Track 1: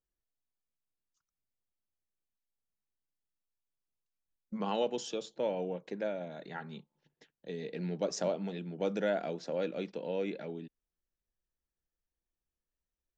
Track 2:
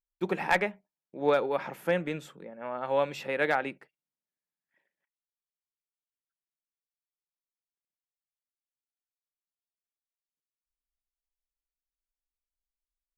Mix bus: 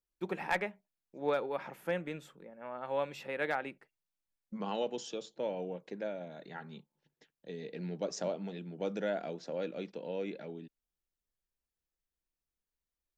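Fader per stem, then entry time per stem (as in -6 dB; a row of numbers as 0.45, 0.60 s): -3.0, -7.0 dB; 0.00, 0.00 s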